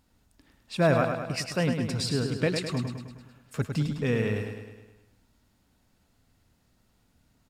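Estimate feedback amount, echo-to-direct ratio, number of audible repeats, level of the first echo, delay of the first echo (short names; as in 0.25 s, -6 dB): 57%, -5.0 dB, 6, -6.5 dB, 0.104 s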